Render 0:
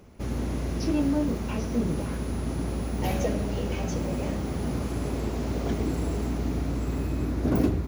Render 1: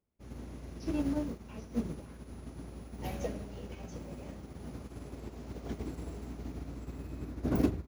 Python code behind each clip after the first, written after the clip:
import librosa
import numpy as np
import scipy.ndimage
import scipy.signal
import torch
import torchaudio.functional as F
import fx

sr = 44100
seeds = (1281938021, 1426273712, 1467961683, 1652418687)

y = fx.upward_expand(x, sr, threshold_db=-41.0, expansion=2.5)
y = y * librosa.db_to_amplitude(-2.0)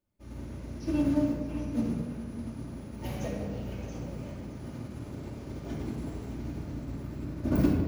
y = x + 10.0 ** (-13.5 / 20.0) * np.pad(x, (int(617 * sr / 1000.0), 0))[:len(x)]
y = fx.room_shoebox(y, sr, seeds[0], volume_m3=2000.0, walls='mixed', distance_m=2.6)
y = y * librosa.db_to_amplitude(-1.0)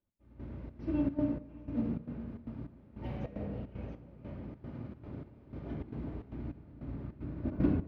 y = fx.step_gate(x, sr, bpm=152, pattern='x...xxx.xxx.x', floor_db=-12.0, edge_ms=4.5)
y = fx.air_absorb(y, sr, metres=390.0)
y = y * librosa.db_to_amplitude(-3.0)